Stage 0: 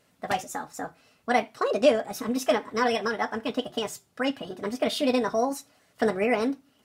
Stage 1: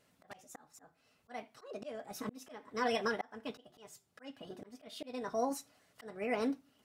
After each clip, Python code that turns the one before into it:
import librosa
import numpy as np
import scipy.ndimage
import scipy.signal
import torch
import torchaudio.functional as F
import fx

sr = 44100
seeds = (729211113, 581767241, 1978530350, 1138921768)

y = fx.auto_swell(x, sr, attack_ms=516.0)
y = y * librosa.db_to_amplitude(-6.0)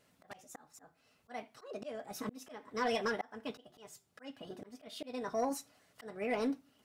y = 10.0 ** (-24.5 / 20.0) * np.tanh(x / 10.0 ** (-24.5 / 20.0))
y = y * librosa.db_to_amplitude(1.0)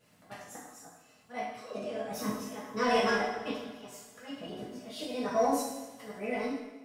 y = fx.fade_out_tail(x, sr, length_s=1.01)
y = fx.rev_double_slope(y, sr, seeds[0], early_s=0.92, late_s=3.0, knee_db=-21, drr_db=-9.0)
y = y * librosa.db_to_amplitude(-2.5)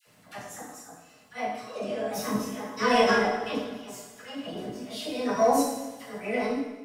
y = fx.dispersion(x, sr, late='lows', ms=69.0, hz=880.0)
y = y * librosa.db_to_amplitude(5.5)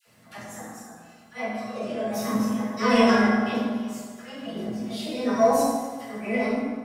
y = fx.rev_fdn(x, sr, rt60_s=1.3, lf_ratio=1.05, hf_ratio=0.35, size_ms=26.0, drr_db=0.5)
y = y * librosa.db_to_amplitude(-1.0)